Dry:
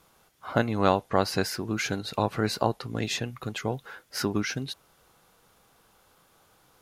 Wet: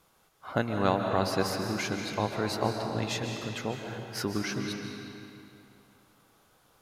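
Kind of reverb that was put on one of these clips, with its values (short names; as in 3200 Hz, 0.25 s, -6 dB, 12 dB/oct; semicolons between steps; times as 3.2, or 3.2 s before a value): digital reverb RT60 2.8 s, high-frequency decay 0.8×, pre-delay 0.105 s, DRR 3 dB; gain -4 dB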